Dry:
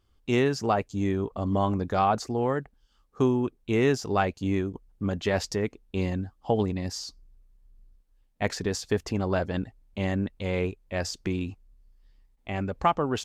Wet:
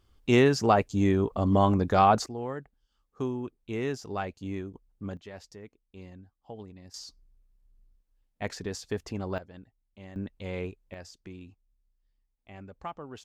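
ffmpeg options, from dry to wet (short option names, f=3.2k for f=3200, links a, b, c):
-af "asetnsamples=n=441:p=0,asendcmd='2.26 volume volume -8.5dB;5.17 volume volume -18.5dB;6.94 volume volume -6.5dB;9.38 volume volume -18.5dB;10.16 volume volume -7dB;10.94 volume volume -15.5dB',volume=3dB"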